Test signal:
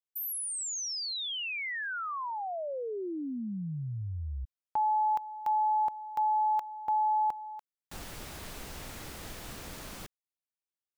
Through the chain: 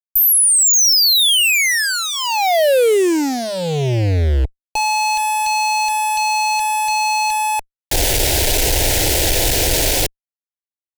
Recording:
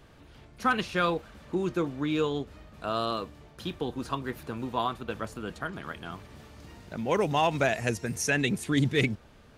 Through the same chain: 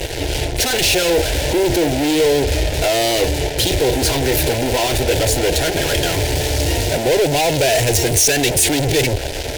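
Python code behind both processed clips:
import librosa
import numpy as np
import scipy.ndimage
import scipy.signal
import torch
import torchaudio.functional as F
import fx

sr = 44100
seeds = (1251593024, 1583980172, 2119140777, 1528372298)

p1 = fx.over_compress(x, sr, threshold_db=-34.0, ratio=-0.5)
p2 = x + (p1 * 10.0 ** (-2.0 / 20.0))
p3 = fx.fuzz(p2, sr, gain_db=48.0, gate_db=-46.0)
p4 = fx.fixed_phaser(p3, sr, hz=490.0, stages=4)
y = p4 * 10.0 ** (2.0 / 20.0)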